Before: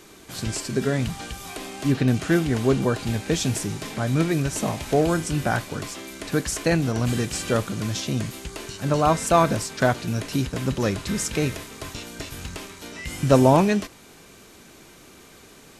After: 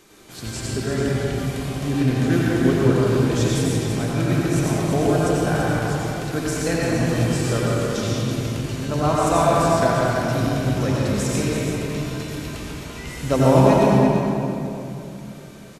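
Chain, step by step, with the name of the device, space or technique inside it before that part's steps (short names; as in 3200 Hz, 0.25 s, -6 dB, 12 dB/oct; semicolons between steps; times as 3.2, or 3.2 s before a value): cave (echo 0.336 s -8 dB; reverb RT60 3.0 s, pre-delay 81 ms, DRR -5 dB); gain -4.5 dB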